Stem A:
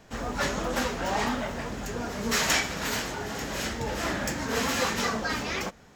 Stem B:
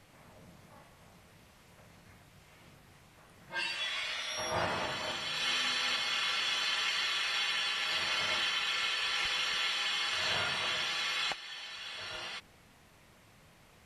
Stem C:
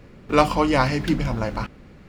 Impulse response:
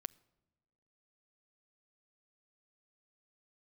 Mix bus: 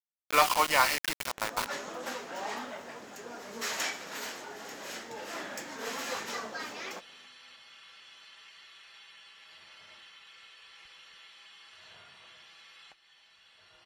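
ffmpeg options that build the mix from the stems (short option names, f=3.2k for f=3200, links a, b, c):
-filter_complex "[0:a]highpass=330,adelay=1300,volume=-8.5dB[a];[1:a]acompressor=threshold=-48dB:ratio=1.5,adelay=1600,volume=-14.5dB[b];[2:a]highpass=970,asoftclip=type=hard:threshold=-14.5dB,acrusher=bits=4:mix=0:aa=0.000001,volume=0.5dB[c];[a][b][c]amix=inputs=3:normalize=0"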